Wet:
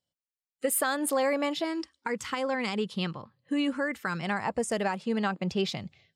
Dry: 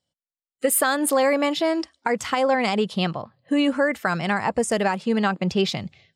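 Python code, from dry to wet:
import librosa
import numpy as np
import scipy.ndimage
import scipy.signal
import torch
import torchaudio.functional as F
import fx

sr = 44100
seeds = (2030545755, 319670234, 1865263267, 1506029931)

y = fx.peak_eq(x, sr, hz=680.0, db=-14.5, octaves=0.32, at=(1.64, 4.23))
y = F.gain(torch.from_numpy(y), -7.0).numpy()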